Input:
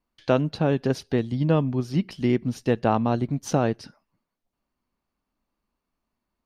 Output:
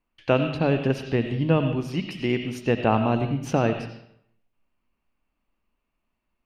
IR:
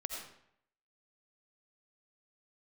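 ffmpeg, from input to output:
-filter_complex "[0:a]asettb=1/sr,asplit=3[link_01][link_02][link_03];[link_01]atrim=end=1.764[link_04];[link_02]atrim=start=1.76:end=2.66,asetpts=PTS-STARTPTS,afade=type=in:duration=0.004:curve=qsin,afade=type=out:start_time=0.896:duration=0.004:curve=qsin,bass=frequency=250:gain=-6,treble=frequency=4000:gain=6[link_05];[link_03]atrim=start=2.656[link_06];[link_04][link_05]acrossfade=duration=0.004:curve1=hsin:curve2=qsin[link_07];[link_07][link_06]acrossfade=duration=0.004:curve1=qsin:curve2=hsin,bandreject=frequency=50:width_type=h:width=6,bandreject=frequency=100:width_type=h:width=6,bandreject=frequency=150:width_type=h:width=6,bandreject=frequency=200:width_type=h:width=6,bandreject=frequency=250:width_type=h:width=6,asplit=2[link_08][link_09];[link_09]equalizer=frequency=2700:width=1.9:gain=14.5[link_10];[1:a]atrim=start_sample=2205,lowpass=4400,lowshelf=frequency=110:gain=9[link_11];[link_10][link_11]afir=irnorm=-1:irlink=0,volume=-2.5dB[link_12];[link_08][link_12]amix=inputs=2:normalize=0,volume=-4dB"

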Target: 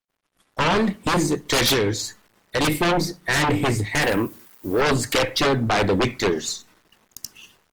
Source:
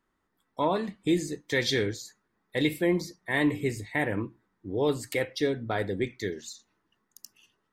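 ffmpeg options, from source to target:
ffmpeg -i in.wav -filter_complex "[0:a]aeval=exprs='if(lt(val(0),0),0.708*val(0),val(0))':channel_layout=same,equalizer=frequency=12000:width_type=o:width=0.77:gain=-4.5,acrusher=bits=11:mix=0:aa=0.000001,asettb=1/sr,asplit=3[link_01][link_02][link_03];[link_01]atrim=end=1.734[link_04];[link_02]atrim=start=1.73:end=2.61,asetpts=PTS-STARTPTS,afade=type=in:duration=0.004:curve=qsin,afade=type=out:start_time=0.876:duration=0.004:curve=qsin,acompressor=threshold=-32dB:ratio=3[link_05];[link_03]atrim=start=2.606[link_06];[link_04][link_05]acrossfade=duration=0.004:curve1=hsin:curve2=qsin[link_07];[link_07][link_06]acrossfade=duration=0.004:curve1=qsin:curve2=hsin,asplit=3[link_08][link_09][link_10];[link_08]afade=type=out:start_time=4.02:duration=0.02[link_11];[link_09]aemphasis=mode=production:type=bsi,afade=type=in:start_time=4.02:duration=0.02,afade=type=out:start_time=4.8:duration=0.02[link_12];[link_10]afade=type=in:start_time=4.8:duration=0.02[link_13];[link_11][link_12][link_13]amix=inputs=3:normalize=0,aeval=exprs='0.178*sin(PI/2*4.47*val(0)/0.178)':channel_layout=same,agate=range=-33dB:threshold=-53dB:ratio=3:detection=peak,asplit=2[link_14][link_15];[link_15]adelay=66,lowpass=frequency=2000:poles=1,volume=-24dB,asplit=2[link_16][link_17];[link_17]adelay=66,lowpass=frequency=2000:poles=1,volume=0.52,asplit=2[link_18][link_19];[link_19]adelay=66,lowpass=frequency=2000:poles=1,volume=0.52[link_20];[link_14][link_16][link_18][link_20]amix=inputs=4:normalize=0" -ar 48000 -c:a libopus -b:a 24k out.opus

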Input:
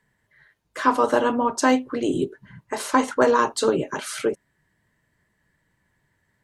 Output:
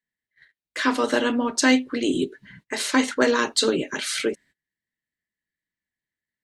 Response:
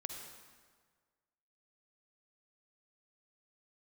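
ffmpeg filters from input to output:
-af "equalizer=frequency=125:width_type=o:width=1:gain=-5,equalizer=frequency=250:width_type=o:width=1:gain=6,equalizer=frequency=1000:width_type=o:width=1:gain=-7,equalizer=frequency=2000:width_type=o:width=1:gain=9,equalizer=frequency=4000:width_type=o:width=1:gain=10,equalizer=frequency=8000:width_type=o:width=1:gain=5,agate=range=-24dB:threshold=-46dB:ratio=16:detection=peak,volume=-3dB"

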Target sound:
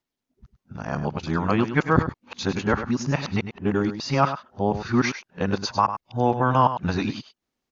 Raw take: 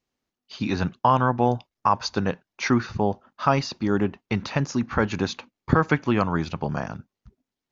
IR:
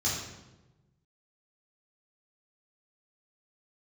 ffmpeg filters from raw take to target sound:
-af "areverse,aecho=1:1:101:0.299"

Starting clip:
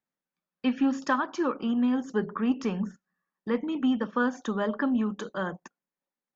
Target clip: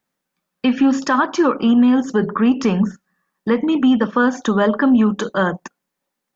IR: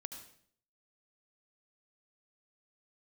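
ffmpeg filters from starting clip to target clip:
-af "alimiter=level_in=19.5dB:limit=-1dB:release=50:level=0:latency=1,volume=-6dB"

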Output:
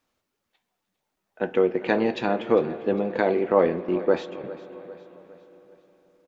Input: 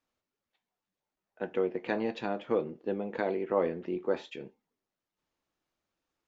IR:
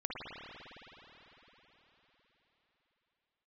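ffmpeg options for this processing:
-filter_complex "[0:a]asettb=1/sr,asplit=3[link_01][link_02][link_03];[link_01]atrim=end=2.934[link_04];[link_02]atrim=start=2.93:end=4.44,asetpts=PTS-STARTPTS,afade=type=in:duration=0.004:curve=qsin,afade=type=out:start_time=1.506:duration=0.004:curve=qsin,agate=range=-14dB:threshold=-38dB:ratio=16:detection=peak[link_05];[link_03]atrim=start=4.436[link_06];[link_04][link_05]acrossfade=duration=0.004:curve1=hsin:curve2=qsin[link_07];[link_07][link_06]acrossfade=duration=0.004:curve1=qsin:curve2=hsin,aecho=1:1:403|806|1209|1612:0.141|0.0678|0.0325|0.0156,asplit=2[link_08][link_09];[1:a]atrim=start_sample=2205[link_10];[link_09][link_10]afir=irnorm=-1:irlink=0,volume=-16.5dB[link_11];[link_08][link_11]amix=inputs=2:normalize=0,volume=8dB"

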